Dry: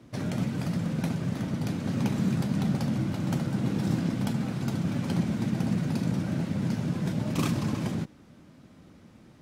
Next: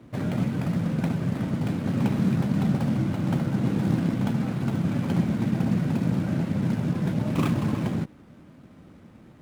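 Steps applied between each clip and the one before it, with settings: median filter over 9 samples; gain +3.5 dB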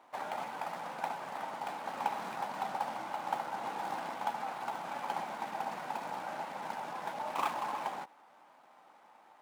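resonant high-pass 840 Hz, resonance Q 4.9; gain -5.5 dB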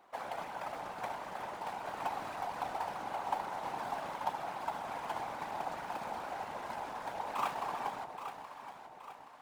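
whisperiser; echo with dull and thin repeats by turns 0.412 s, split 880 Hz, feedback 67%, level -6 dB; gain -2 dB

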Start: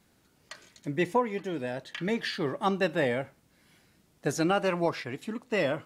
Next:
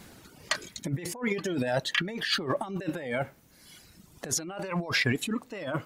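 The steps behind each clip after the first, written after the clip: reverb removal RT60 1.4 s; negative-ratio compressor -40 dBFS, ratio -1; gain +8 dB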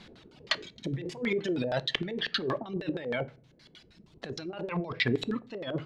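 LFO low-pass square 6.4 Hz 450–3800 Hz; on a send at -16 dB: reverb RT60 0.40 s, pre-delay 3 ms; on the sum: gain -3 dB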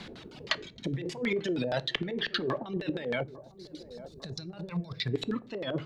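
spectral gain 3.23–5.14, 200–3500 Hz -13 dB; band-limited delay 0.85 s, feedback 32%, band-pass 440 Hz, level -18 dB; three-band squash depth 40%

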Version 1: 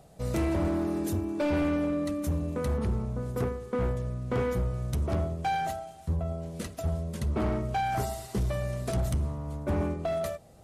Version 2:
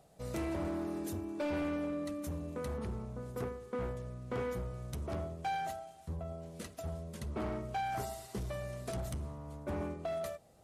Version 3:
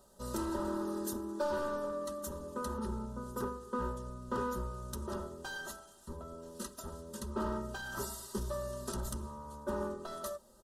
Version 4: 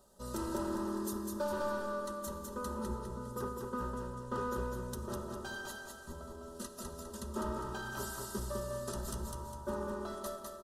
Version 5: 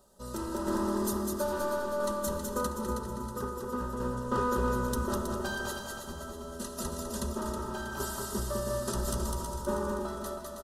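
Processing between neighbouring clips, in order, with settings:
low shelf 210 Hz -6 dB; gain -6.5 dB
fixed phaser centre 450 Hz, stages 8; comb 3.2 ms, depth 90%; gain +4.5 dB
feedback echo 0.203 s, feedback 39%, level -3.5 dB; on a send at -11.5 dB: reverb RT60 3.7 s, pre-delay 47 ms; on the sum: gain -2 dB
random-step tremolo 1.5 Hz; on a send: feedback echo 0.32 s, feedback 46%, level -7 dB; on the sum: gain +8.5 dB

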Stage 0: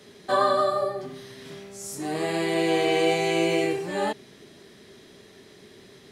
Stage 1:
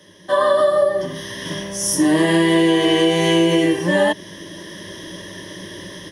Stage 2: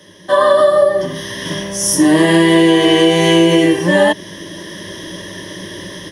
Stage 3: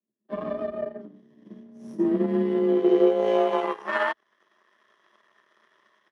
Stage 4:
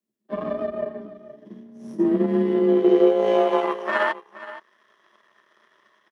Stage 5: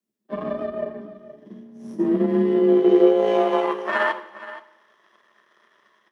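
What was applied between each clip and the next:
AGC gain up to 14 dB; ripple EQ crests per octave 1.2, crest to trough 15 dB; compressor, threshold -12 dBFS, peak gain reduction 7 dB
hard clip -6.5 dBFS, distortion -43 dB; gain +5 dB
power-law curve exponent 2; band-pass sweep 210 Hz -> 1200 Hz, 2.58–3.94; frequency shift +32 Hz
echo 0.472 s -15.5 dB; gain +3 dB
two-slope reverb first 0.82 s, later 2.5 s, from -24 dB, DRR 10.5 dB

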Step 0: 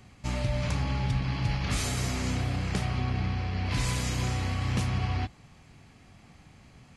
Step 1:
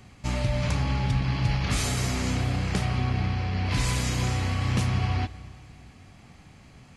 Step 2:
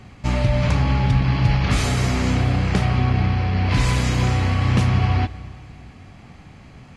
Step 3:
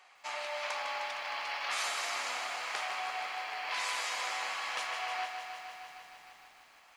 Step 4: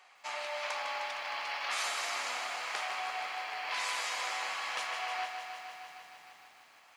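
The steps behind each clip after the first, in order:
reverb RT60 2.3 s, pre-delay 75 ms, DRR 18 dB; gain +3 dB
high shelf 5300 Hz -11.5 dB; gain +7.5 dB
HPF 710 Hz 24 dB/oct; lo-fi delay 0.154 s, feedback 80%, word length 9-bit, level -8 dB; gain -8 dB
HPF 90 Hz 12 dB/oct

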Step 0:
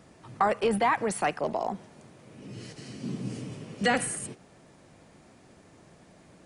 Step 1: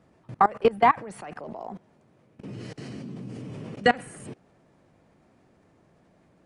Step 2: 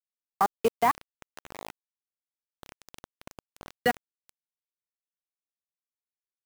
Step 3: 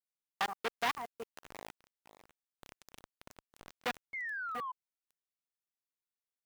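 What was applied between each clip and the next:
level quantiser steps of 23 dB; high shelf 3400 Hz -12 dB; gain +8.5 dB
bit-crush 5-bit; gain -5 dB
reverse delay 0.47 s, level -14 dB; painted sound fall, 4.13–4.72, 990–2200 Hz -34 dBFS; core saturation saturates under 3000 Hz; gain -5 dB

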